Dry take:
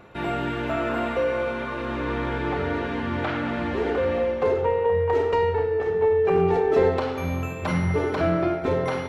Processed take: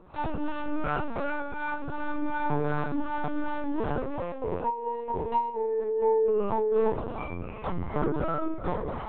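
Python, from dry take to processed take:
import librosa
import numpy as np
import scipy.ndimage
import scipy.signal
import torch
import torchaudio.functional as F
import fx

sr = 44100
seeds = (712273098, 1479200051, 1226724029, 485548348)

p1 = fx.graphic_eq_10(x, sr, hz=(125, 250, 1000, 2000), db=(-5, 8, 9, -8))
p2 = fx.rider(p1, sr, range_db=3, speed_s=2.0)
p3 = fx.resonator_bank(p2, sr, root=47, chord='minor', decay_s=0.22)
p4 = fx.harmonic_tremolo(p3, sr, hz=2.7, depth_pct=70, crossover_hz=450.0)
p5 = p4 + fx.echo_feedback(p4, sr, ms=655, feedback_pct=25, wet_db=-21.5, dry=0)
p6 = fx.lpc_vocoder(p5, sr, seeds[0], excitation='pitch_kept', order=10)
y = p6 * librosa.db_to_amplitude(7.5)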